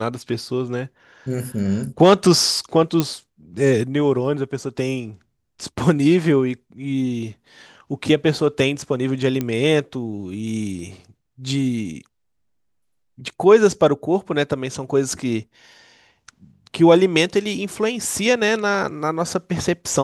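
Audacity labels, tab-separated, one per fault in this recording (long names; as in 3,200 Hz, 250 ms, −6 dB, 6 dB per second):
3.000000	3.000000	click −5 dBFS
9.410000	9.410000	click −10 dBFS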